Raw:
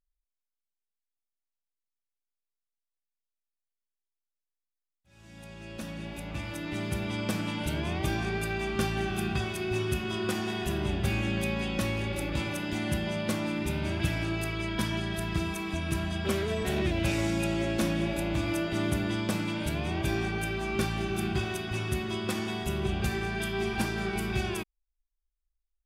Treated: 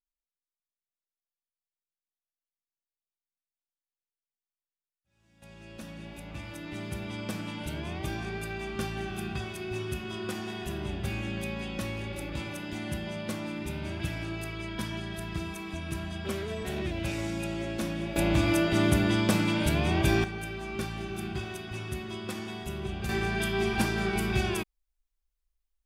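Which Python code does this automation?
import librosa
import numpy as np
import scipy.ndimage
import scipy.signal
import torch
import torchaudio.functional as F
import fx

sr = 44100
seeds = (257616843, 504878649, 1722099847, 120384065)

y = fx.gain(x, sr, db=fx.steps((0.0, -15.0), (5.42, -4.5), (18.16, 5.0), (20.24, -5.0), (23.09, 2.5)))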